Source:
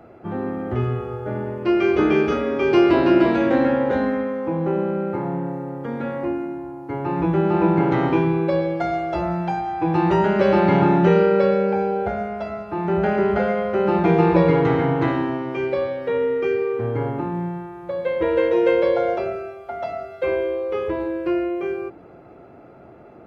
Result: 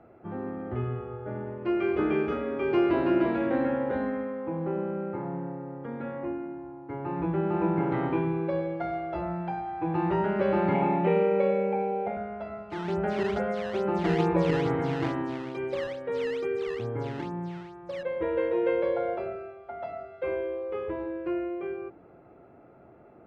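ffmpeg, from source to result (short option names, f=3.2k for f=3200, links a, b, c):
-filter_complex "[0:a]asettb=1/sr,asplit=3[a][b][c];[a]atrim=end=10.744[d];[b]atrim=start=10.74:end=12.17,asetpts=PTS-STARTPTS,afade=t=in:d=0.004:c=qsin,afade=t=out:st=1.426:d=0.004:c=qsin,highpass=190,equalizer=f=230:t=q:w=4:g=7,equalizer=f=320:t=q:w=4:g=-6,equalizer=f=500:t=q:w=4:g=4,equalizer=f=810:t=q:w=4:g=4,equalizer=f=1.5k:t=q:w=4:g=-10,equalizer=f=2.3k:t=q:w=4:g=8,lowpass=f=4.5k:w=0.5412,lowpass=f=4.5k:w=1.3066[e];[c]atrim=start=12.166[f];[d][e]acrossfade=d=0.004:c1=hsin:c2=qsin[g];[g][f]acrossfade=d=0.004:c1=qsin:c2=hsin,asettb=1/sr,asplit=3[h][i][j];[h]atrim=end=12.704[k];[i]atrim=start=12.7:end=18.03,asetpts=PTS-STARTPTS,afade=t=in:d=0.004:c=qsin,afade=t=out:st=5.326:d=0.004:c=qsin,acrusher=samples=11:mix=1:aa=0.000001:lfo=1:lforange=17.6:lforate=2.3[l];[j]atrim=start=18.026[m];[k][l]acrossfade=d=0.004:c1=hsin:c2=qsin[n];[n][m]acrossfade=d=0.004:c1=qsin:c2=hsin,lowpass=2.7k,volume=-8.5dB"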